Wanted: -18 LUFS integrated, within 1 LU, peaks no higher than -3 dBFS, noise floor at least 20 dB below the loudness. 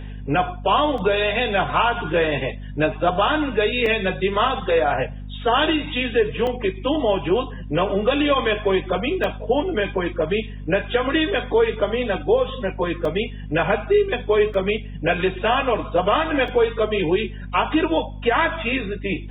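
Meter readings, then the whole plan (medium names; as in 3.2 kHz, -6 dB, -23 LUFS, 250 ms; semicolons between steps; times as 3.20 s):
dropouts 7; longest dropout 2.7 ms; hum 50 Hz; highest harmonic 250 Hz; hum level -31 dBFS; loudness -21.0 LUFS; peak level -7.0 dBFS; loudness target -18.0 LUFS
-> interpolate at 0.98/3.86/6.47/9.24/13.05/14.54/16.48 s, 2.7 ms; hum notches 50/100/150/200/250 Hz; trim +3 dB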